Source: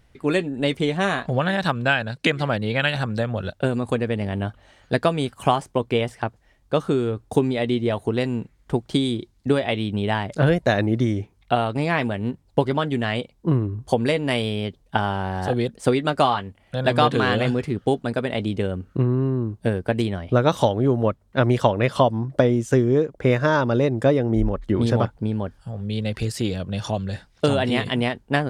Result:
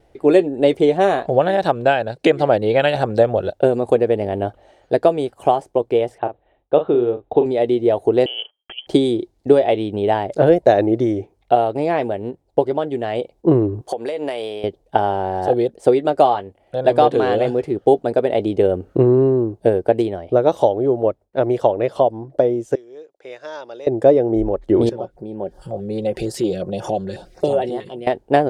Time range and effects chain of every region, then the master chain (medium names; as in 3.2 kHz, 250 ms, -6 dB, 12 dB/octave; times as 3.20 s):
6.18–7.46 s: rippled Chebyshev low-pass 3.9 kHz, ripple 3 dB + doubling 41 ms -9.5 dB
8.26–8.87 s: gate -51 dBFS, range -23 dB + compressor with a negative ratio -27 dBFS, ratio -0.5 + frequency inversion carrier 3.2 kHz
13.81–14.64 s: high-pass 700 Hz 6 dB/octave + compression 8:1, threshold -32 dBFS
22.75–23.87 s: low-pass 5.5 kHz + differentiator
24.89–28.07 s: comb 5.5 ms, depth 50% + compression 2:1, threshold -47 dBFS + step-sequenced notch 11 Hz 690–4100 Hz
whole clip: gate with hold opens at -53 dBFS; high-order bell 510 Hz +13 dB; level rider; trim -1 dB